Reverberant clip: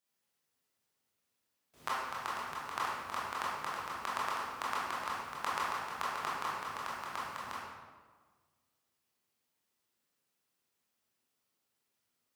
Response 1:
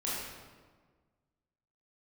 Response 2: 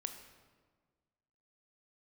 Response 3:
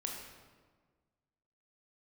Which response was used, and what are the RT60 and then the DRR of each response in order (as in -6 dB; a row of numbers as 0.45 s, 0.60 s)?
1; 1.5 s, 1.5 s, 1.5 s; -8.0 dB, 6.5 dB, 0.0 dB